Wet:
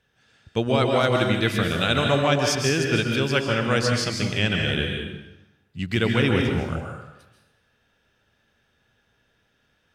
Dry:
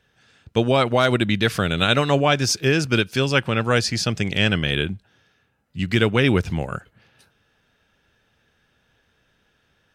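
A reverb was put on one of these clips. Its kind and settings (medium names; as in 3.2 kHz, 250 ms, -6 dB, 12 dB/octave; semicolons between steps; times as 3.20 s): plate-style reverb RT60 0.92 s, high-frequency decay 0.85×, pre-delay 120 ms, DRR 1.5 dB; trim -4.5 dB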